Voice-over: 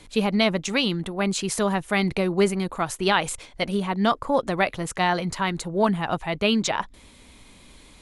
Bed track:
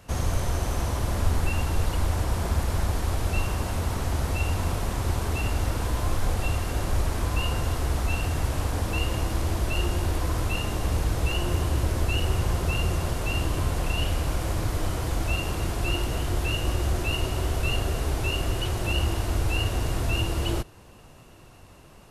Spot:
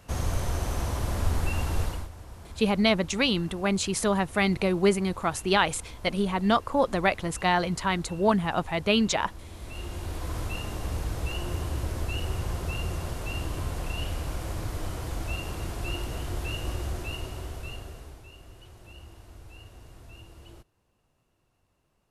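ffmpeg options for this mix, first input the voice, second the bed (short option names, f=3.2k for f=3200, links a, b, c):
-filter_complex "[0:a]adelay=2450,volume=-1.5dB[a];[1:a]volume=10dB,afade=t=out:st=1.81:d=0.28:silence=0.158489,afade=t=in:st=9.5:d=0.89:silence=0.237137,afade=t=out:st=16.72:d=1.53:silence=0.149624[b];[a][b]amix=inputs=2:normalize=0"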